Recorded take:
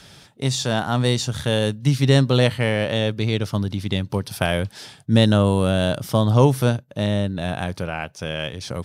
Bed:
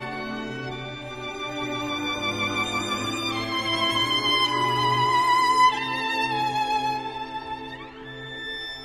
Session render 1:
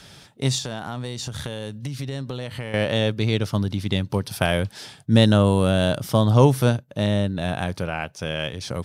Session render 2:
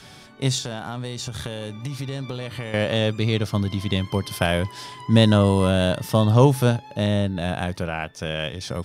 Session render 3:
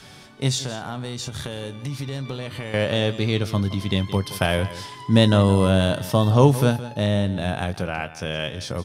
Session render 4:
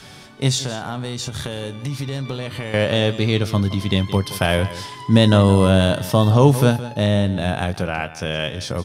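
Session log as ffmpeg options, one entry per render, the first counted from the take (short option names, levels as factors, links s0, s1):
-filter_complex "[0:a]asettb=1/sr,asplit=3[s0][s1][s2];[s0]atrim=end=0.584[s3];[s1]atrim=start=0.58:end=2.74,asetpts=PTS-STARTPTS,afade=t=in:d=0.004:c=qsin,afade=t=out:st=2.156:d=0.004:c=qsin,acompressor=threshold=0.0501:ratio=12:attack=3.2:release=140:knee=1:detection=peak[s4];[s2]atrim=start=2.736[s5];[s3][s4]acrossfade=d=0.004:c1=hsin:c2=qsin[s6];[s6][s5]acrossfade=d=0.004:c1=qsin:c2=hsin"
-filter_complex "[1:a]volume=0.119[s0];[0:a][s0]amix=inputs=2:normalize=0"
-filter_complex "[0:a]asplit=2[s0][s1];[s1]adelay=21,volume=0.2[s2];[s0][s2]amix=inputs=2:normalize=0,aecho=1:1:170:0.178"
-af "volume=1.5,alimiter=limit=0.794:level=0:latency=1"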